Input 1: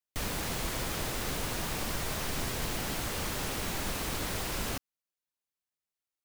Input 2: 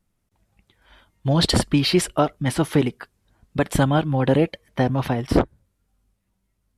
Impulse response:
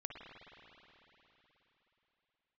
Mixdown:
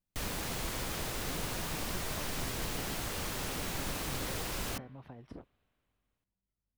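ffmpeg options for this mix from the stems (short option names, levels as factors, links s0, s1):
-filter_complex "[0:a]bandreject=f=73.47:t=h:w=4,bandreject=f=146.94:t=h:w=4,bandreject=f=220.41:t=h:w=4,bandreject=f=293.88:t=h:w=4,bandreject=f=367.35:t=h:w=4,bandreject=f=440.82:t=h:w=4,bandreject=f=514.29:t=h:w=4,bandreject=f=587.76:t=h:w=4,bandreject=f=661.23:t=h:w=4,bandreject=f=734.7:t=h:w=4,bandreject=f=808.17:t=h:w=4,bandreject=f=881.64:t=h:w=4,bandreject=f=955.11:t=h:w=4,bandreject=f=1028.58:t=h:w=4,bandreject=f=1102.05:t=h:w=4,bandreject=f=1175.52:t=h:w=4,bandreject=f=1248.99:t=h:w=4,bandreject=f=1322.46:t=h:w=4,bandreject=f=1395.93:t=h:w=4,bandreject=f=1469.4:t=h:w=4,bandreject=f=1542.87:t=h:w=4,bandreject=f=1616.34:t=h:w=4,bandreject=f=1689.81:t=h:w=4,bandreject=f=1763.28:t=h:w=4,bandreject=f=1836.75:t=h:w=4,bandreject=f=1910.22:t=h:w=4,bandreject=f=1983.69:t=h:w=4,bandreject=f=2057.16:t=h:w=4,bandreject=f=2130.63:t=h:w=4,bandreject=f=2204.1:t=h:w=4,bandreject=f=2277.57:t=h:w=4,bandreject=f=2351.04:t=h:w=4,volume=0.708,asplit=2[s0][s1];[s1]volume=0.0708[s2];[1:a]acompressor=threshold=0.0447:ratio=8,lowpass=f=1600:p=1,volume=0.126[s3];[2:a]atrim=start_sample=2205[s4];[s2][s4]afir=irnorm=-1:irlink=0[s5];[s0][s3][s5]amix=inputs=3:normalize=0"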